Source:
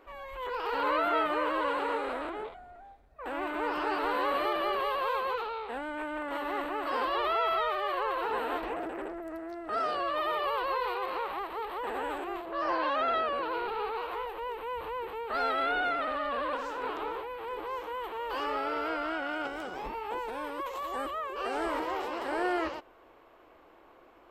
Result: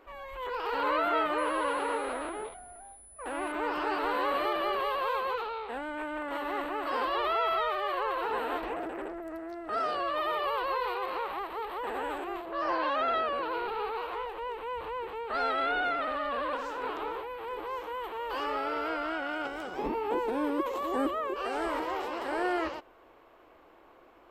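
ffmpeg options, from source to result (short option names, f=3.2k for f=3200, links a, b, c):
-filter_complex "[0:a]asettb=1/sr,asplit=3[a][b][c];[a]atrim=end=1.384[d];[b]atrim=start=1.38:end=3.52,asetpts=PTS-STARTPTS,afade=t=in:d=0.004:c=qsin,afade=t=out:st=2.136:d=0.004:c=qsin,aeval=exprs='val(0)+0.00282*sin(2*PI*10000*n/s)':c=same[e];[c]atrim=start=3.516[f];[d][e]acrossfade=d=0.004:c1=hsin:c2=qsin[g];[g][f]acrossfade=d=0.004:c1=qsin:c2=hsin,asettb=1/sr,asplit=3[h][i][j];[h]atrim=end=14.104[k];[i]atrim=start=14.1:end=16.05,asetpts=PTS-STARTPTS,afade=t=in:d=0.004:c=qsin,afade=t=out:st=1.946:d=0.004:c=qsin,lowpass=9.7k[l];[j]atrim=start=16.046[m];[k][l]acrossfade=d=0.004:c1=hsin:c2=qsin[n];[n][m]acrossfade=d=0.004:c1=qsin:c2=hsin,asettb=1/sr,asplit=3[o][p][q];[o]atrim=end=19.784[r];[p]atrim=start=19.78:end=21.34,asetpts=PTS-STARTPTS,afade=t=in:d=0.004:c=qsin,afade=t=out:st=1.556:d=0.004:c=qsin,equalizer=f=290:t=o:w=1.6:g=13.5[s];[q]atrim=start=21.336[t];[r][s]acrossfade=d=0.004:c1=hsin:c2=qsin[u];[u][t]acrossfade=d=0.004:c1=qsin:c2=hsin"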